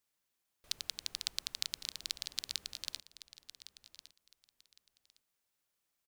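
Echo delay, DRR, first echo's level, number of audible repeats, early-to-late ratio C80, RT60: 1.109 s, none, -14.5 dB, 2, none, none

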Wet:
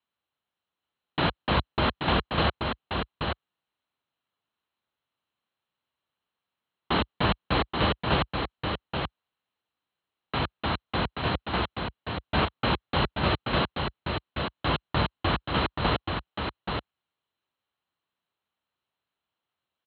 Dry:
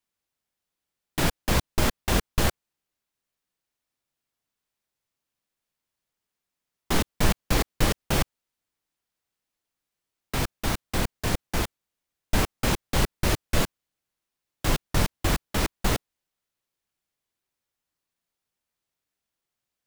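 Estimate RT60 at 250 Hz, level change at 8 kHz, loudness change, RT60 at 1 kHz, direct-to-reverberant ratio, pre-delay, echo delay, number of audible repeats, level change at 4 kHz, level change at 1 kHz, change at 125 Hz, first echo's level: none, under -40 dB, -1.0 dB, none, none, none, 0.83 s, 1, +2.0 dB, +4.5 dB, -1.0 dB, -5.0 dB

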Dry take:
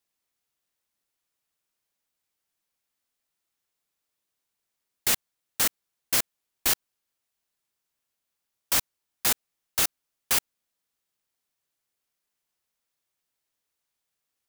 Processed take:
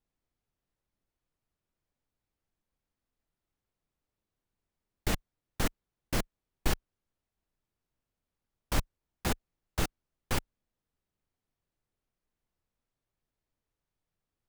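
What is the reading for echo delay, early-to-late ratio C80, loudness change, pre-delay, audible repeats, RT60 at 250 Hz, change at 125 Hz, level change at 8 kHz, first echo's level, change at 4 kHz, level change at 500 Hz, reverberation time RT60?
none, none, -10.5 dB, none, none, none, +10.5 dB, -14.5 dB, none, -10.5 dB, +1.5 dB, none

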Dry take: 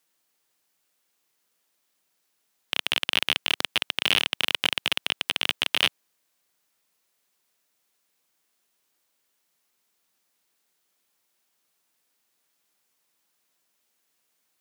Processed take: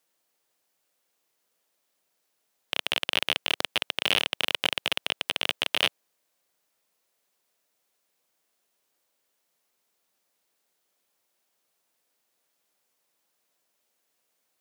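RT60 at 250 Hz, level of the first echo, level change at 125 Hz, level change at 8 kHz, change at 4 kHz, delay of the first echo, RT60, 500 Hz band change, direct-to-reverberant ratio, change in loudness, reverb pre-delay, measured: none, none, -2.0 dB, -2.5 dB, -2.5 dB, none, none, +2.5 dB, none, -2.0 dB, none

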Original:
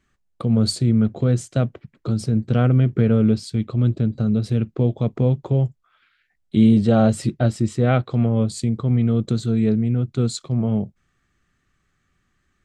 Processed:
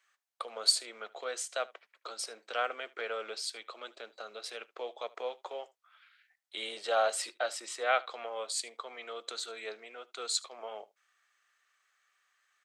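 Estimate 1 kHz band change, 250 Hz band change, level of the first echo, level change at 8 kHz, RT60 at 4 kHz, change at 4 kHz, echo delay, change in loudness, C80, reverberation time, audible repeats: -4.0 dB, under -40 dB, -22.0 dB, -0.5 dB, none, 0.0 dB, 75 ms, -15.0 dB, none, none, 1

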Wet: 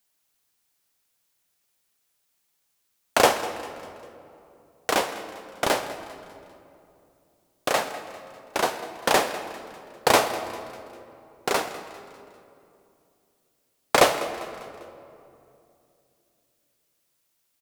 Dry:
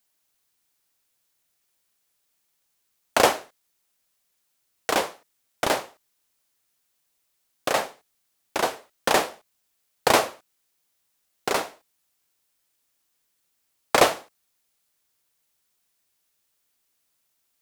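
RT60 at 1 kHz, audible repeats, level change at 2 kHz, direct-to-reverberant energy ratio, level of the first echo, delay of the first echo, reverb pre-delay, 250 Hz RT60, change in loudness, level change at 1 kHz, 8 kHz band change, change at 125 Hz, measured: 2.5 s, 4, +0.5 dB, 8.5 dB, -16.5 dB, 0.199 s, 3 ms, 3.3 s, -1.0 dB, +0.5 dB, +0.5 dB, +1.0 dB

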